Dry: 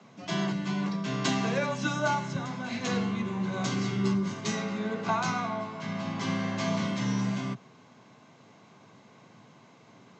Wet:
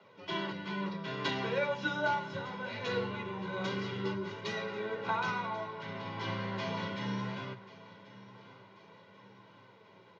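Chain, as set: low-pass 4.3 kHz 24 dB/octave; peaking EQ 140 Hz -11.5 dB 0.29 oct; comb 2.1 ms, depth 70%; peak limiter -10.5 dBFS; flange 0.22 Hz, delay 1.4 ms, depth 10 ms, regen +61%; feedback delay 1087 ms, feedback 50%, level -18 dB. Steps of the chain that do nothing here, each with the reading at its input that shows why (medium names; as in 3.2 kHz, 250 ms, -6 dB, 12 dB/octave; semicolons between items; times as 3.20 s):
peak limiter -10.5 dBFS: peak at its input -14.0 dBFS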